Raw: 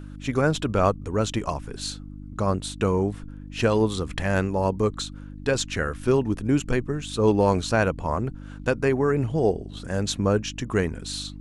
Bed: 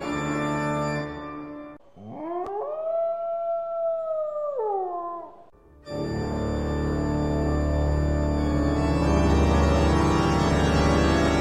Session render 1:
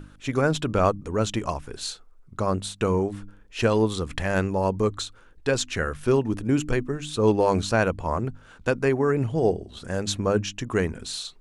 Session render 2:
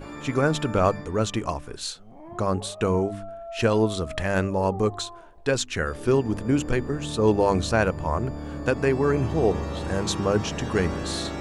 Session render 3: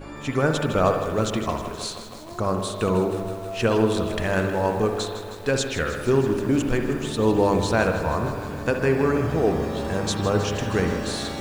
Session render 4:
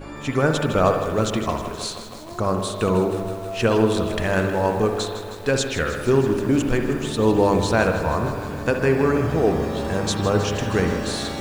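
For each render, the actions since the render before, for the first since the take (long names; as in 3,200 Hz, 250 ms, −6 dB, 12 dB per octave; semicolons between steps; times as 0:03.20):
hum removal 50 Hz, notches 6
mix in bed −10.5 dB
spring reverb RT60 1.1 s, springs 59 ms, chirp 30 ms, DRR 5.5 dB; feedback echo at a low word length 158 ms, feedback 80%, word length 7 bits, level −12 dB
level +2 dB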